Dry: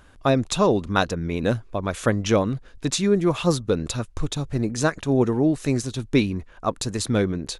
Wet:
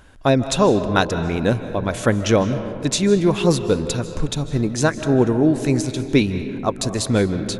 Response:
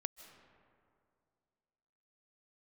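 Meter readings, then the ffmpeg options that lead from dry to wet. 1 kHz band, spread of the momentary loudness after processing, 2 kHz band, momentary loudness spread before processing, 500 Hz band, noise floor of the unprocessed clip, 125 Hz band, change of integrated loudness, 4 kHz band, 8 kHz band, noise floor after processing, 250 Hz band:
+3.0 dB, 7 LU, +3.5 dB, 8 LU, +4.0 dB, −49 dBFS, +4.0 dB, +4.0 dB, +3.5 dB, +3.5 dB, −33 dBFS, +4.0 dB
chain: -filter_complex "[0:a]bandreject=frequency=1200:width=10[link_01];[1:a]atrim=start_sample=2205[link_02];[link_01][link_02]afir=irnorm=-1:irlink=0,volume=6dB"

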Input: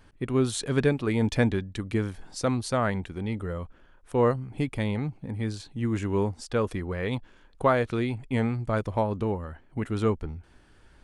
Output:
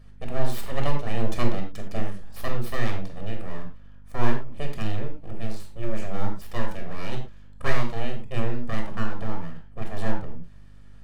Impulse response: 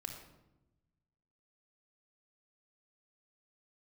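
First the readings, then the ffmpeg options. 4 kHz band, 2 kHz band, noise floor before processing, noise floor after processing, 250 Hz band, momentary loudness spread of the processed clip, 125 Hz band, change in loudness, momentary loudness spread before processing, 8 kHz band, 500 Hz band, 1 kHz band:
−1.0 dB, −1.0 dB, −57 dBFS, −43 dBFS, −5.5 dB, 10 LU, −2.0 dB, −4.5 dB, 9 LU, −7.0 dB, −6.5 dB, −2.5 dB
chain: -filter_complex "[0:a]aeval=exprs='abs(val(0))':channel_layout=same[link_01];[1:a]atrim=start_sample=2205,afade=type=out:start_time=0.21:duration=0.01,atrim=end_sample=9702,asetrate=61740,aresample=44100[link_02];[link_01][link_02]afir=irnorm=-1:irlink=0,aeval=exprs='val(0)+0.00224*(sin(2*PI*50*n/s)+sin(2*PI*2*50*n/s)/2+sin(2*PI*3*50*n/s)/3+sin(2*PI*4*50*n/s)/4+sin(2*PI*5*50*n/s)/5)':channel_layout=same,volume=4dB"

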